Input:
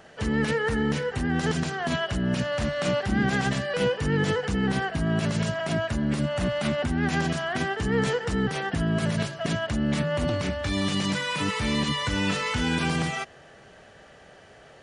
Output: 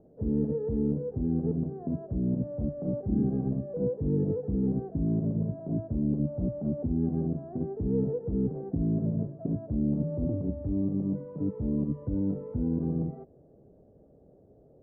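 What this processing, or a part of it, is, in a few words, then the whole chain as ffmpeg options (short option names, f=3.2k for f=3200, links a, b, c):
under water: -af "lowpass=f=500:w=0.5412,lowpass=f=500:w=1.3066,equalizer=f=280:t=o:w=0.24:g=5,volume=-2.5dB"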